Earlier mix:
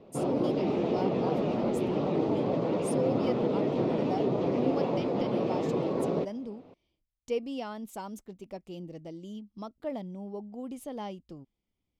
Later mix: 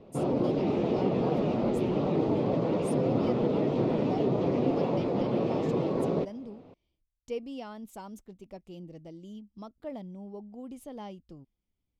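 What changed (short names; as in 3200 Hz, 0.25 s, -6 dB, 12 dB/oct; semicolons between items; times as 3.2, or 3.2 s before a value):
speech -4.5 dB; master: add low shelf 110 Hz +8.5 dB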